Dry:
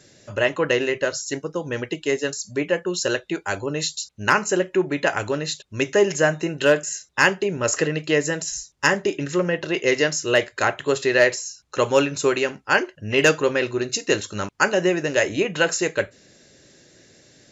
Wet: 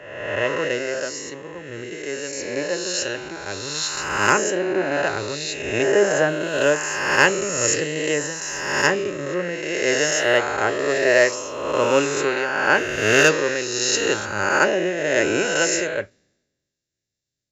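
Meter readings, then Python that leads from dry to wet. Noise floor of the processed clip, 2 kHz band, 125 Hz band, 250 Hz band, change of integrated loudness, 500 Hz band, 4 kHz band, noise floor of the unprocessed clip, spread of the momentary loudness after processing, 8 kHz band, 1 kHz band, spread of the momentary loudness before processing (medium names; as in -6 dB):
-81 dBFS, +2.0 dB, -3.0 dB, -1.5 dB, +1.5 dB, +0.5 dB, +2.0 dB, -54 dBFS, 11 LU, no reading, +2.0 dB, 8 LU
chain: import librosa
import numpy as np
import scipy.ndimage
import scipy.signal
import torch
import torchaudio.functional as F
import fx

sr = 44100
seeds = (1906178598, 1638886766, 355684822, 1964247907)

y = fx.spec_swells(x, sr, rise_s=2.39)
y = fx.band_widen(y, sr, depth_pct=100)
y = y * 10.0 ** (-5.0 / 20.0)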